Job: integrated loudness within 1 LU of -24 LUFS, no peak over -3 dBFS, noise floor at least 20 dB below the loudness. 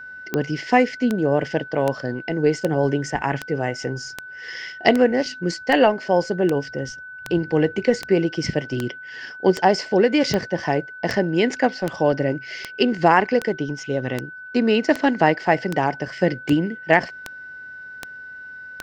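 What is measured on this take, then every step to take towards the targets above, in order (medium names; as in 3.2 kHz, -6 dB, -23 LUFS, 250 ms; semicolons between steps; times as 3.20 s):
clicks found 25; steady tone 1.5 kHz; tone level -35 dBFS; loudness -21.5 LUFS; peak level -1.5 dBFS; loudness target -24.0 LUFS
-> de-click; band-stop 1.5 kHz, Q 30; trim -2.5 dB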